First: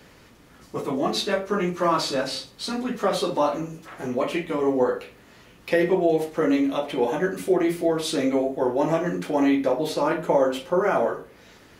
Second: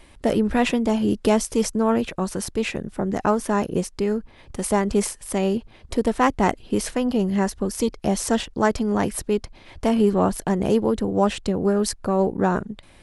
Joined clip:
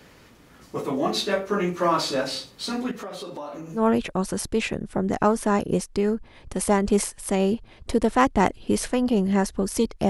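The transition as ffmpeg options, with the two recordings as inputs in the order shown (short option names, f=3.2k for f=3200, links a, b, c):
-filter_complex "[0:a]asettb=1/sr,asplit=3[a][b][c];[a]atrim=end=2.914[d];[b]atrim=start=2.91:end=3.83,asetpts=PTS-STARTPTS,afade=t=in:d=0.004:c=qsin,afade=t=out:st=0.916:d=0.004:c=qsin,acompressor=threshold=-33dB:ratio=5:attack=3.2:release=140:knee=1:detection=peak[e];[c]atrim=start=3.826[f];[d][e]acrossfade=d=0.004:c1=hsin:c2=qsin[g];[g][f]acrossfade=d=0.004:c1=qsin:c2=hsin,apad=whole_dur=10.09,atrim=end=10.09,atrim=end=3.83,asetpts=PTS-STARTPTS[h];[1:a]atrim=start=1.76:end=8.12,asetpts=PTS-STARTPTS[i];[h][i]acrossfade=d=0.1:c1=tri:c2=tri"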